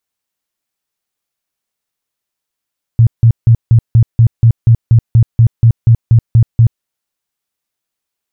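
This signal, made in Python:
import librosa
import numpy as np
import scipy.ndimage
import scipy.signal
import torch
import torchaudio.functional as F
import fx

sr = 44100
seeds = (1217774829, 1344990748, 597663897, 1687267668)

y = fx.tone_burst(sr, hz=115.0, cycles=9, every_s=0.24, bursts=16, level_db=-2.5)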